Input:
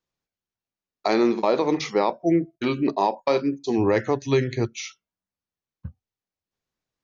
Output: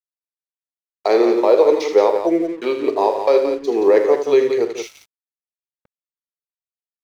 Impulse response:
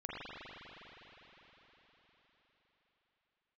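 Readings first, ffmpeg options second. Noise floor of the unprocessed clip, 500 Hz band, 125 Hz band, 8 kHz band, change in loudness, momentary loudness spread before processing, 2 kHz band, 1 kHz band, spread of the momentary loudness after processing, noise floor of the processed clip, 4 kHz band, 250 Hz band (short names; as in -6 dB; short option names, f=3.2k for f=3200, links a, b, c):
under -85 dBFS, +9.5 dB, under -15 dB, n/a, +6.5 dB, 7 LU, +1.5 dB, +3.5 dB, 8 LU, under -85 dBFS, +1.0 dB, +1.5 dB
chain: -filter_complex "[0:a]highpass=f=450:t=q:w=3.7,asplit=2[a][b];[b]adelay=43,volume=-14dB[c];[a][c]amix=inputs=2:normalize=0,asplit=2[d][e];[e]aecho=0:1:78.72|174.9:0.355|0.398[f];[d][f]amix=inputs=2:normalize=0,aeval=exprs='sgn(val(0))*max(abs(val(0))-0.00841,0)':c=same"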